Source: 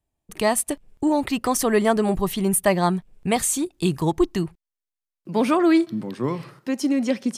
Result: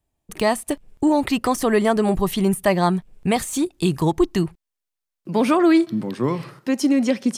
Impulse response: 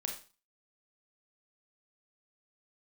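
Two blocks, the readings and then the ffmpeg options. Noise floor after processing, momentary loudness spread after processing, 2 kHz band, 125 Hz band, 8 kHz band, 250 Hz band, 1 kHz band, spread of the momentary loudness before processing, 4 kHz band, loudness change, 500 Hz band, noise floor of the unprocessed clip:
-83 dBFS, 8 LU, +1.5 dB, +2.5 dB, -5.5 dB, +2.5 dB, +1.5 dB, 9 LU, +1.5 dB, +1.5 dB, +1.5 dB, under -85 dBFS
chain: -filter_complex "[0:a]deesser=0.45,asplit=2[s0][s1];[s1]alimiter=limit=0.2:level=0:latency=1:release=184,volume=1.19[s2];[s0][s2]amix=inputs=2:normalize=0,volume=0.708"

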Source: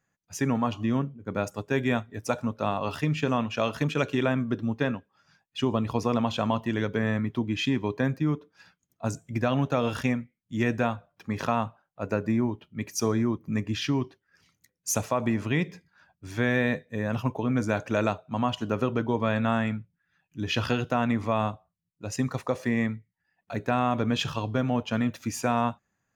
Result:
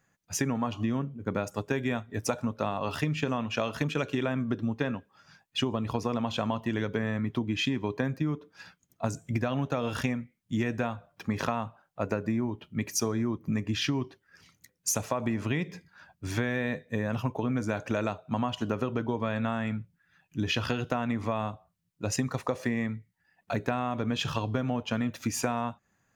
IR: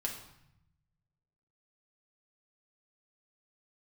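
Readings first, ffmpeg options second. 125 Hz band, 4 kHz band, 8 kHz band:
-2.5 dB, -0.5 dB, +1.5 dB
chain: -af "acompressor=threshold=0.0251:ratio=6,volume=2"

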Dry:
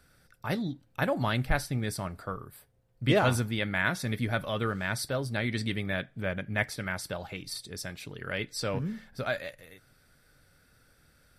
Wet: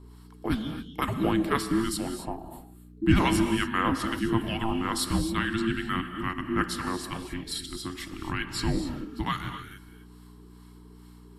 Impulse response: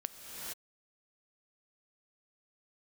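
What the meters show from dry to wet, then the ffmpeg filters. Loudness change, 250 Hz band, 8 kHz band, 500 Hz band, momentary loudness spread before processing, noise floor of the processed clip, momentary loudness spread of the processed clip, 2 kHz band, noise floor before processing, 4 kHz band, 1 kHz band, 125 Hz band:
+2.5 dB, +7.0 dB, +3.5 dB, -1.5 dB, 11 LU, -50 dBFS, 12 LU, -1.0 dB, -65 dBFS, +3.0 dB, +5.0 dB, 0.0 dB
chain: -filter_complex "[0:a]acrossover=split=1200[s0][s1];[s0]aeval=exprs='val(0)*(1-0.7/2+0.7/2*cos(2*PI*2.3*n/s))':c=same[s2];[s1]aeval=exprs='val(0)*(1-0.7/2-0.7/2*cos(2*PI*2.3*n/s))':c=same[s3];[s2][s3]amix=inputs=2:normalize=0,afreqshift=-450,aeval=exprs='val(0)+0.00224*(sin(2*PI*60*n/s)+sin(2*PI*2*60*n/s)/2+sin(2*PI*3*60*n/s)/3+sin(2*PI*4*60*n/s)/4+sin(2*PI*5*60*n/s)/5)':c=same[s4];[1:a]atrim=start_sample=2205,afade=t=out:st=0.33:d=0.01,atrim=end_sample=14994[s5];[s4][s5]afir=irnorm=-1:irlink=0,volume=2.51"

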